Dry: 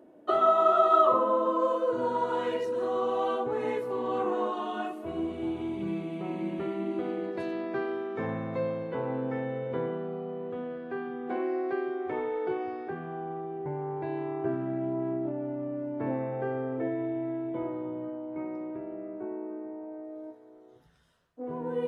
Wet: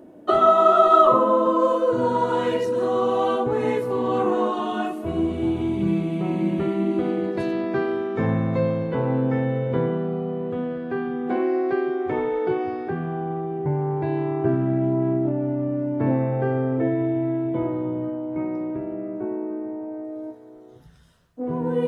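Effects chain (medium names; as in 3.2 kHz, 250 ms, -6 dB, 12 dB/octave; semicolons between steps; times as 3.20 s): tone controls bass +9 dB, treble +4 dB; trim +6.5 dB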